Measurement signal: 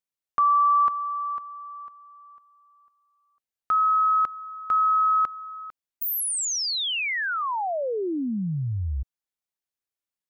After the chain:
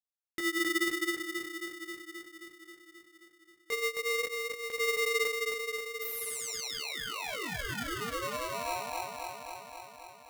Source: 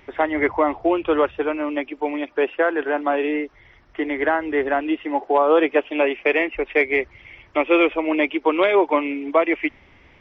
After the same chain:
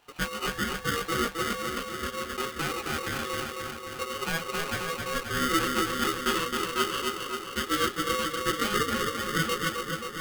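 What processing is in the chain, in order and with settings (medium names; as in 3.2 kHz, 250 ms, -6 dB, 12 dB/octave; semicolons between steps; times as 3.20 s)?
chorus voices 2, 0.63 Hz, delay 19 ms, depth 4.1 ms; bucket-brigade echo 266 ms, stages 4096, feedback 70%, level -4 dB; polarity switched at an audio rate 820 Hz; trim -8.5 dB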